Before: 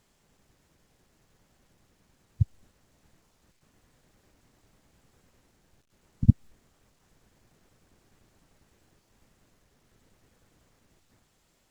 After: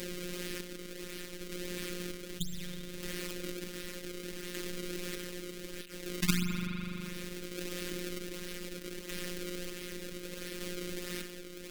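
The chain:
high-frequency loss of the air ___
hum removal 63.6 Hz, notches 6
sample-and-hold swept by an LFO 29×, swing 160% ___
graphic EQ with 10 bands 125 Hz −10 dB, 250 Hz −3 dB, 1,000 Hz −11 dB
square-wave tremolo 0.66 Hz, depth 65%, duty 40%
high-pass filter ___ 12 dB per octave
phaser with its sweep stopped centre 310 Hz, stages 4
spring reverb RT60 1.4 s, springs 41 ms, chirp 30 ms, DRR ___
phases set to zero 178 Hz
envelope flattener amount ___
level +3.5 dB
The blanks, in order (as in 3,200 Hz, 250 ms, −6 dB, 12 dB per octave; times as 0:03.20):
57 metres, 1.5 Hz, 46 Hz, 18 dB, 70%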